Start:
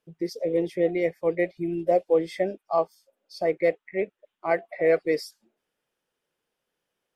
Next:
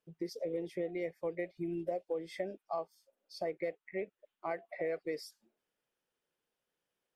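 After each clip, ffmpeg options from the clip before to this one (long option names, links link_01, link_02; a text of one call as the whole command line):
ffmpeg -i in.wav -af "acompressor=threshold=-27dB:ratio=6,volume=-6.5dB" out.wav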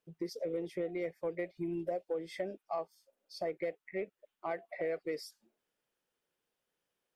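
ffmpeg -i in.wav -af "asoftclip=type=tanh:threshold=-24.5dB,volume=1dB" out.wav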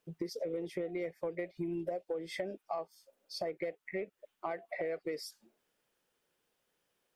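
ffmpeg -i in.wav -af "acompressor=threshold=-42dB:ratio=3,volume=6dB" out.wav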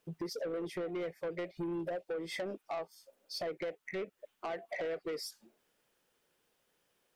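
ffmpeg -i in.wav -af "asoftclip=type=tanh:threshold=-36dB,volume=3.5dB" out.wav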